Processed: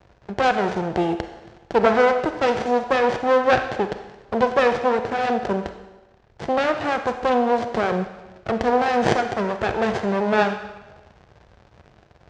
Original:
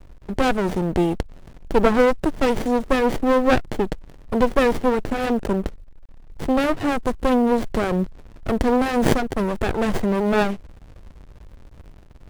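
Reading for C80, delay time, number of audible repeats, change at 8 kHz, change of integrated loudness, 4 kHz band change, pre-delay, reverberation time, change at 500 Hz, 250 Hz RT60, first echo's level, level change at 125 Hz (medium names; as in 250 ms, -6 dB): 10.5 dB, no echo, no echo, no reading, 0.0 dB, +0.5 dB, 31 ms, 1.1 s, +0.5 dB, 1.0 s, no echo, -4.5 dB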